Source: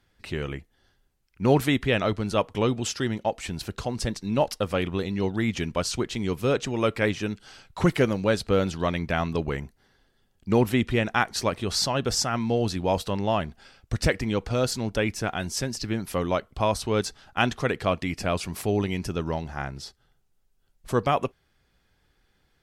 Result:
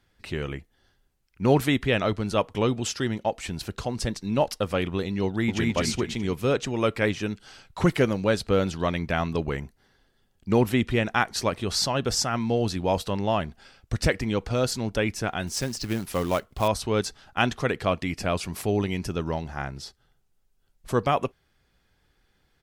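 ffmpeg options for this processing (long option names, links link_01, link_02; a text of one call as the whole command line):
ffmpeg -i in.wav -filter_complex "[0:a]asplit=2[link_01][link_02];[link_02]afade=type=in:start_time=5.27:duration=0.01,afade=type=out:start_time=5.69:duration=0.01,aecho=0:1:210|420|630|840|1050:0.944061|0.377624|0.15105|0.0604199|0.024168[link_03];[link_01][link_03]amix=inputs=2:normalize=0,asettb=1/sr,asplit=3[link_04][link_05][link_06];[link_04]atrim=end=15.474[link_07];[link_05]atrim=start=15.47:end=16.68,asetpts=PTS-STARTPTS,afade=type=in:duration=0.004:curve=qsin,afade=type=out:start_time=1.206:duration=0.004:curve=qsin,acrusher=bits=4:mode=log:mix=0:aa=0.000001[link_08];[link_06]atrim=start=16.676[link_09];[link_07][link_08]acrossfade=duration=0.004:curve1=hsin:curve2=qsin[link_10];[link_10][link_09]acrossfade=duration=0.004:curve1=qsin:curve2=hsin" out.wav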